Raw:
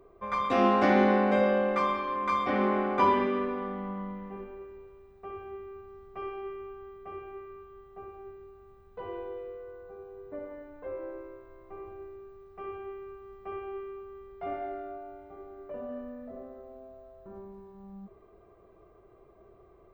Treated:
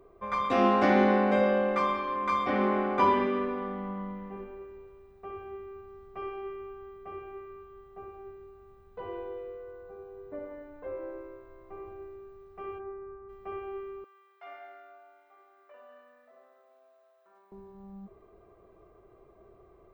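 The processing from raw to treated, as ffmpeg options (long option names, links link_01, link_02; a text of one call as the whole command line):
ffmpeg -i in.wav -filter_complex "[0:a]asplit=3[link_01][link_02][link_03];[link_01]afade=type=out:start_time=12.78:duration=0.02[link_04];[link_02]lowpass=frequency=1700:width=0.5412,lowpass=frequency=1700:width=1.3066,afade=type=in:start_time=12.78:duration=0.02,afade=type=out:start_time=13.28:duration=0.02[link_05];[link_03]afade=type=in:start_time=13.28:duration=0.02[link_06];[link_04][link_05][link_06]amix=inputs=3:normalize=0,asettb=1/sr,asplit=3[link_07][link_08][link_09];[link_07]atrim=end=14.044[link_10];[link_08]atrim=start=14.04:end=17.52,asetpts=PTS-STARTPTS,afade=type=in:duration=0.004:curve=qsin,afade=type=out:start_time=3.476:duration=0.004:curve=qsin,highpass=1300[link_11];[link_09]atrim=start=17.516[link_12];[link_10][link_11]acrossfade=duration=0.004:curve1=hsin:curve2=qsin[link_13];[link_13][link_12]acrossfade=duration=0.004:curve1=qsin:curve2=hsin" out.wav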